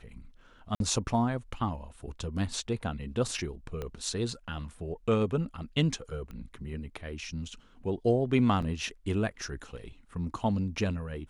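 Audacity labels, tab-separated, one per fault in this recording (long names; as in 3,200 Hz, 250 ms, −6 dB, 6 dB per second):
0.750000	0.800000	drop-out 52 ms
3.820000	3.820000	click −23 dBFS
6.310000	6.310000	click −31 dBFS
8.620000	8.620000	drop-out 3.8 ms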